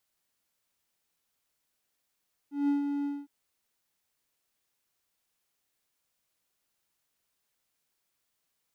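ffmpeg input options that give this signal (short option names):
-f lavfi -i "aevalsrc='0.0944*(1-4*abs(mod(285*t+0.25,1)-0.5))':d=0.76:s=44100,afade=t=in:d=0.173,afade=t=out:st=0.173:d=0.134:silence=0.501,afade=t=out:st=0.54:d=0.22"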